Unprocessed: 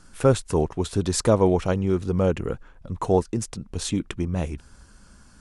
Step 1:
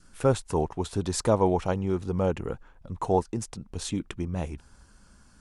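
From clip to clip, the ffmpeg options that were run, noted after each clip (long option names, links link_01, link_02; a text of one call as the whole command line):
ffmpeg -i in.wav -af "adynamicequalizer=threshold=0.01:dfrequency=850:dqfactor=2.5:tfrequency=850:tqfactor=2.5:attack=5:release=100:ratio=0.375:range=3.5:mode=boostabove:tftype=bell,volume=-5dB" out.wav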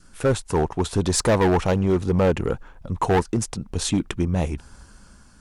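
ffmpeg -i in.wav -af "dynaudnorm=framelen=200:gausssize=7:maxgain=4.5dB,asoftclip=type=hard:threshold=-18.5dB,volume=4.5dB" out.wav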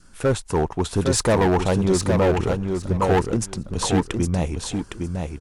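ffmpeg -i in.wav -af "aecho=1:1:810|1620|2430:0.562|0.0956|0.0163" out.wav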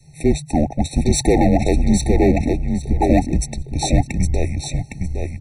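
ffmpeg -i in.wav -af "afreqshift=-160,afftfilt=real='re*eq(mod(floor(b*sr/1024/900),2),0)':imag='im*eq(mod(floor(b*sr/1024/900),2),0)':win_size=1024:overlap=0.75,volume=4.5dB" out.wav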